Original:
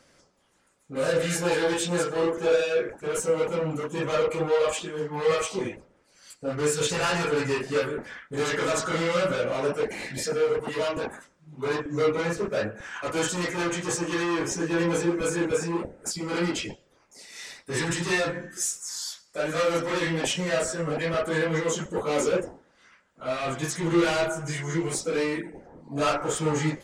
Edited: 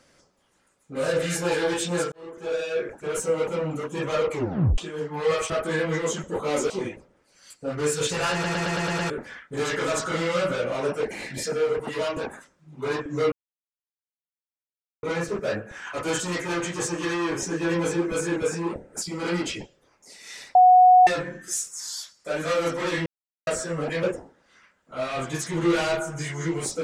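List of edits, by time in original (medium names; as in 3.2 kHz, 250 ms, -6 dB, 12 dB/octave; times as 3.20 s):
2.12–2.94 s: fade in
4.32 s: tape stop 0.46 s
7.13 s: stutter in place 0.11 s, 7 plays
12.12 s: insert silence 1.71 s
17.64–18.16 s: bleep 734 Hz -10 dBFS
20.15–20.56 s: mute
21.12–22.32 s: move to 5.50 s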